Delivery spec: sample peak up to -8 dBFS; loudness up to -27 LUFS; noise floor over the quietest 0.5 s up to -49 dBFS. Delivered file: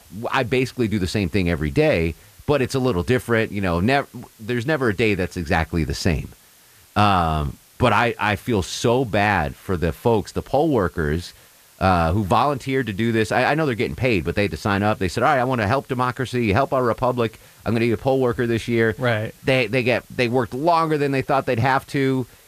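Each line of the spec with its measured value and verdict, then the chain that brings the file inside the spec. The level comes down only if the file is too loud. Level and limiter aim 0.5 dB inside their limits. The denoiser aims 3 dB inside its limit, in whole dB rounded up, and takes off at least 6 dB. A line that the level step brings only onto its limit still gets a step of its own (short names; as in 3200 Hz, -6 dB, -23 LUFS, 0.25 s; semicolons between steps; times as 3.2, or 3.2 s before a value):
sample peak -4.0 dBFS: fail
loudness -21.0 LUFS: fail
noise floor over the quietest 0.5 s -51 dBFS: OK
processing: gain -6.5 dB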